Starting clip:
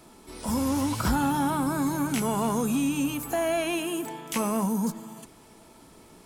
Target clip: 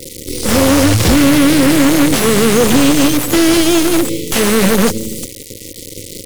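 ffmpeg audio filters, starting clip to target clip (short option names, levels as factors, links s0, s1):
-filter_complex "[0:a]acrusher=bits=5:dc=4:mix=0:aa=0.000001,equalizer=f=100:t=o:w=0.33:g=10,equalizer=f=315:t=o:w=0.33:g=6,equalizer=f=500:t=o:w=0.33:g=6,equalizer=f=2500:t=o:w=0.33:g=-4,afftfilt=real='re*(1-between(b*sr/4096,580,1900))':imag='im*(1-between(b*sr/4096,580,1900))':win_size=4096:overlap=0.75,apsyclip=18.8,acrossover=split=2600[s0][s1];[s1]crystalizer=i=5:c=0[s2];[s0][s2]amix=inputs=2:normalize=0,volume=0.891,asoftclip=hard,volume=1.12,areverse,acompressor=mode=upward:threshold=0.501:ratio=2.5,areverse,aemphasis=mode=reproduction:type=75kf,volume=0.668"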